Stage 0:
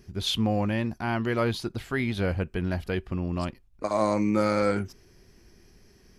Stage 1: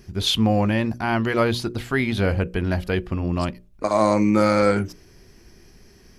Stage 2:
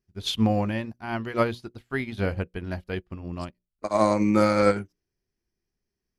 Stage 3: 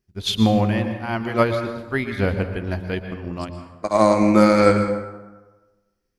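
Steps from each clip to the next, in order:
hum notches 60/120/180/240/300/360/420/480/540/600 Hz; trim +6.5 dB
upward expansion 2.5:1, over -38 dBFS
plate-style reverb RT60 1.2 s, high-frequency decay 0.55×, pre-delay 105 ms, DRR 7.5 dB; trim +5 dB

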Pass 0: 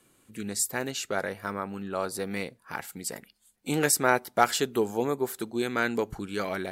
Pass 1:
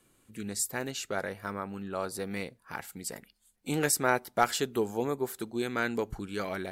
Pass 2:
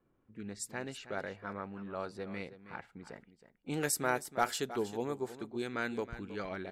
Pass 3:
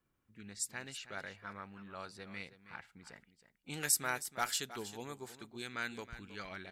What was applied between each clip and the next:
bass shelf 63 Hz +10.5 dB; trim -3.5 dB
level-controlled noise filter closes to 1.2 kHz, open at -24 dBFS; delay 319 ms -13.5 dB; trim -5.5 dB
amplifier tone stack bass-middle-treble 5-5-5; trim +9.5 dB

